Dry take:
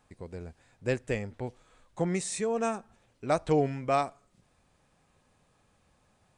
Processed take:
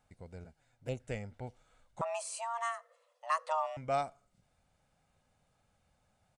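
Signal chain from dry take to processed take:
0:00.44–0:01.00: flanger swept by the level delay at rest 9.9 ms, full sweep at −27.5 dBFS
comb filter 1.4 ms, depth 43%
0:02.01–0:03.77: frequency shifter +470 Hz
level −7.5 dB

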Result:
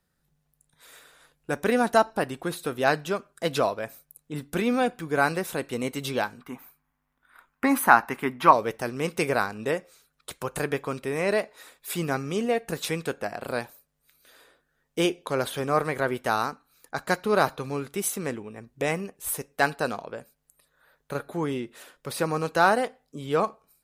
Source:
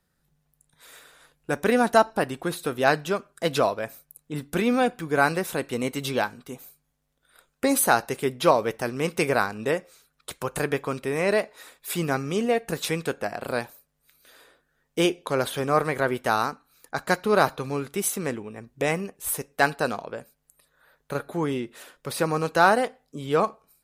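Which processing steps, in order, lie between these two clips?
0:06.41–0:08.53: octave-band graphic EQ 125/250/500/1,000/2,000/4,000/8,000 Hz −4/+6/−9/+11/+6/−6/−9 dB
level −2 dB

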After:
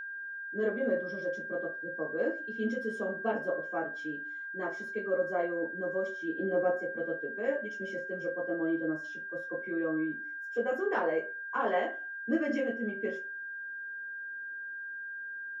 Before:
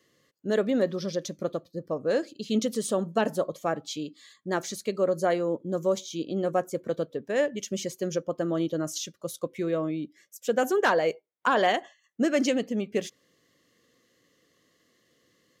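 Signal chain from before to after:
0:06.28–0:06.71: dynamic equaliser 290 Hz, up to +6 dB, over −40 dBFS, Q 0.79
convolution reverb RT60 0.35 s, pre-delay 77 ms
steady tone 1,600 Hz −36 dBFS
0:07.99–0:09.69: high-shelf EQ 5,700 Hz −8.5 dB
level −2 dB

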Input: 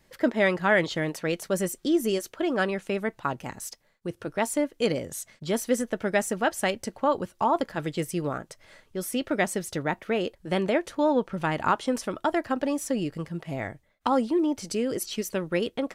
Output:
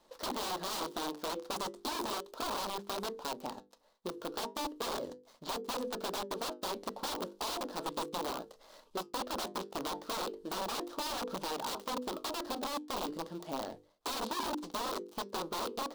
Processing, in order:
gap after every zero crossing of 0.16 ms
low-shelf EQ 280 Hz −4 dB
mains-hum notches 50/100/150/200/250/300/350/400/450/500 Hz
de-essing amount 100%
flanger 0.35 Hz, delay 5.8 ms, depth 5 ms, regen −72%
wrap-around overflow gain 32 dB
downward compressor 3 to 1, threshold −40 dBFS, peak gain reduction 4.5 dB
octave-band graphic EQ 125/250/500/1,000/2,000/4,000 Hz −12/+6/+5/+10/−9/+8 dB

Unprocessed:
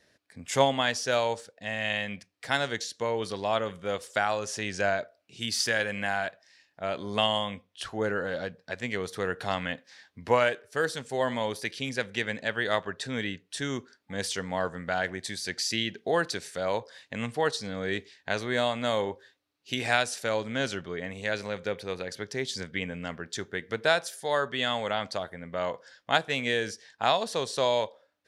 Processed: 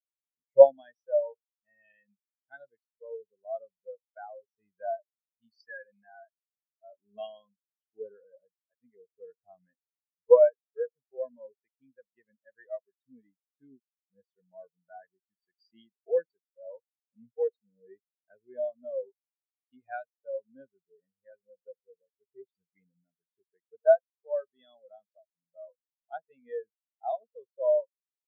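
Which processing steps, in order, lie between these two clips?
every bin expanded away from the loudest bin 4 to 1
level +3.5 dB

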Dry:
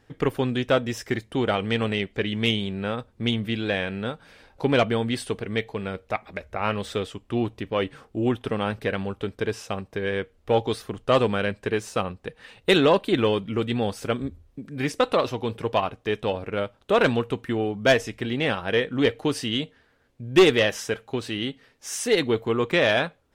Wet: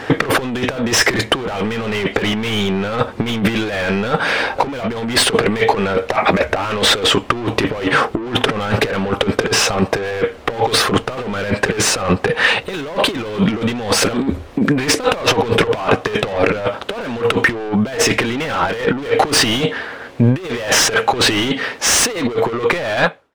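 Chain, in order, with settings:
fade-out on the ending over 1.36 s
mid-hump overdrive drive 34 dB, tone 1,800 Hz, clips at −7 dBFS
compressor whose output falls as the input rises −21 dBFS, ratio −0.5
level +5.5 dB

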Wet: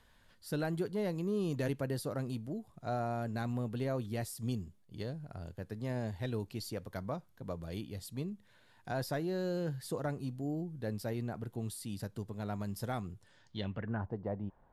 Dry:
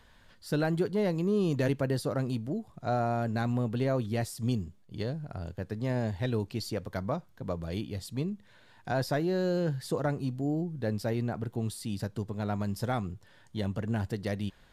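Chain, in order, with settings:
low-pass filter sweep 12,000 Hz → 880 Hz, 0:13.17–0:14.11
level −6.5 dB

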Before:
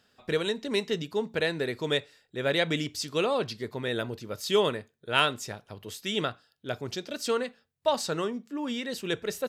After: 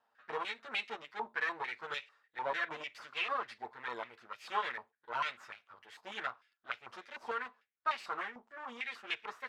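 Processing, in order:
lower of the sound and its delayed copy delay 8.7 ms
de-essing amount 75%
band-pass on a step sequencer 6.7 Hz 900–2,500 Hz
level +4.5 dB

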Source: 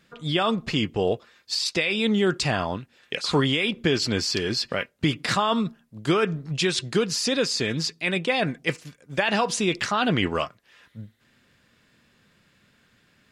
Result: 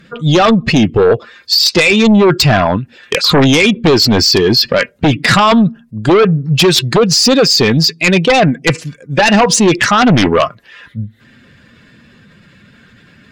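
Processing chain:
expanding power law on the bin magnitudes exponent 1.5
sine wavefolder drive 9 dB, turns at −9.5 dBFS
level +5 dB

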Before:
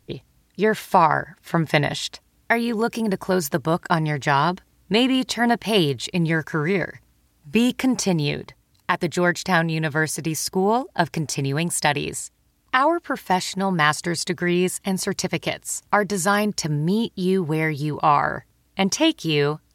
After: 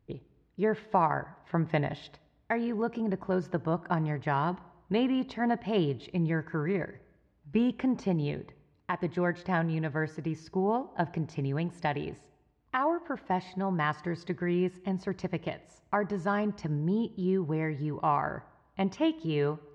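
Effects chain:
head-to-tape spacing loss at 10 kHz 37 dB
on a send: convolution reverb RT60 1.0 s, pre-delay 16 ms, DRR 19 dB
on the sum: level −6.5 dB

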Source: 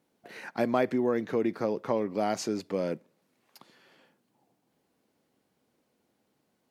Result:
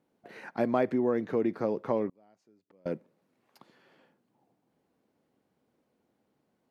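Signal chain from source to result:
high-shelf EQ 2,500 Hz −10 dB
0:02.09–0:02.86: gate with flip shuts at −34 dBFS, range −33 dB

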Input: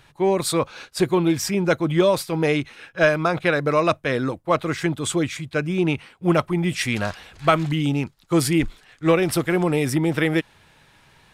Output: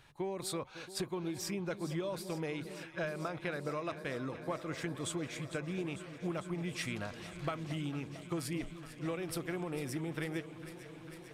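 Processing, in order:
downward compressor 6 to 1, threshold −27 dBFS, peak gain reduction 14.5 dB
delay that swaps between a low-pass and a high-pass 225 ms, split 890 Hz, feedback 90%, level −13 dB
level −8.5 dB

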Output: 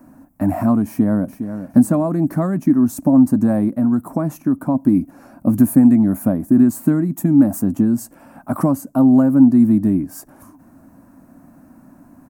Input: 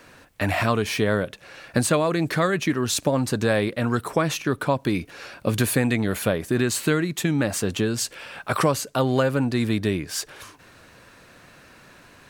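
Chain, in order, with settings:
drawn EQ curve 130 Hz 0 dB, 270 Hz +15 dB, 440 Hz −13 dB, 650 Hz +2 dB, 940 Hz −2 dB, 3,500 Hz −30 dB, 5,800 Hz −15 dB, 14,000 Hz +2 dB
0:00.87–0:01.64: delay throw 410 ms, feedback 20%, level −10 dB
0:03.72–0:04.75: downward compressor 1.5 to 1, threshold −20 dBFS, peak gain reduction 3.5 dB
0:07.16–0:07.63: high-shelf EQ 11,000 Hz +8 dB
level +1.5 dB

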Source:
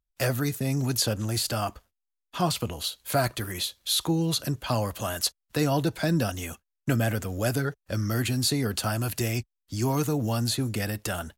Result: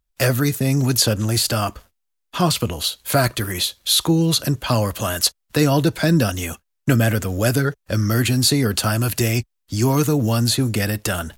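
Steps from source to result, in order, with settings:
dynamic equaliser 780 Hz, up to −5 dB, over −43 dBFS, Q 2.9
reversed playback
upward compression, threshold −48 dBFS
reversed playback
level +8.5 dB

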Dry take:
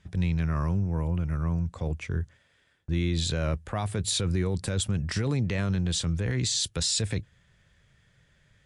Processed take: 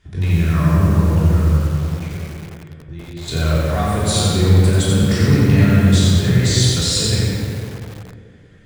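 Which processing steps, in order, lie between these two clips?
0:01.43–0:03.28: downward compressor 5 to 1, threshold −40 dBFS, peak gain reduction 15 dB
on a send: tape delay 202 ms, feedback 68%, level −3 dB, low-pass 2,400 Hz
on the sum: rectangular room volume 1,000 cubic metres, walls mixed, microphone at 3.2 metres
feedback echo at a low word length 88 ms, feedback 35%, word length 6 bits, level −3 dB
level +2 dB

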